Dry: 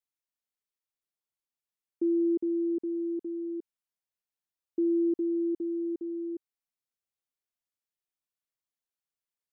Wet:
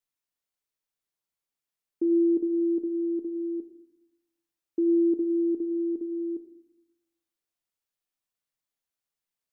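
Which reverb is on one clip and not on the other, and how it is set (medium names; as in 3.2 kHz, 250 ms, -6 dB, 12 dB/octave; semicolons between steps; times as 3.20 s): simulated room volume 170 m³, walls mixed, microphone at 0.36 m; trim +2.5 dB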